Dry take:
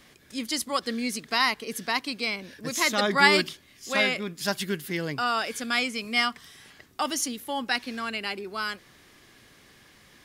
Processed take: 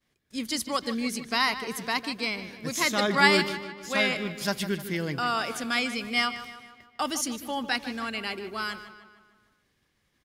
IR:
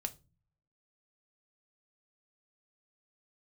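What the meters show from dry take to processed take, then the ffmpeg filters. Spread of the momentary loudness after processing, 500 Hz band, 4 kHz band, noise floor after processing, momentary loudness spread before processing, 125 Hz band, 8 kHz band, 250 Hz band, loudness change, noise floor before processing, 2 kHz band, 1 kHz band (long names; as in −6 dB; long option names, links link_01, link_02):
11 LU, −0.5 dB, −1.5 dB, −73 dBFS, 10 LU, +2.0 dB, −1.5 dB, +1.0 dB, −1.0 dB, −56 dBFS, −1.0 dB, −1.0 dB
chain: -filter_complex "[0:a]lowshelf=frequency=140:gain=8,agate=range=-33dB:threshold=-42dB:ratio=3:detection=peak,asplit=2[link_01][link_02];[link_02]adelay=152,lowpass=frequency=4400:poles=1,volume=-12dB,asplit=2[link_03][link_04];[link_04]adelay=152,lowpass=frequency=4400:poles=1,volume=0.54,asplit=2[link_05][link_06];[link_06]adelay=152,lowpass=frequency=4400:poles=1,volume=0.54,asplit=2[link_07][link_08];[link_08]adelay=152,lowpass=frequency=4400:poles=1,volume=0.54,asplit=2[link_09][link_10];[link_10]adelay=152,lowpass=frequency=4400:poles=1,volume=0.54,asplit=2[link_11][link_12];[link_12]adelay=152,lowpass=frequency=4400:poles=1,volume=0.54[link_13];[link_01][link_03][link_05][link_07][link_09][link_11][link_13]amix=inputs=7:normalize=0,volume=-1.5dB"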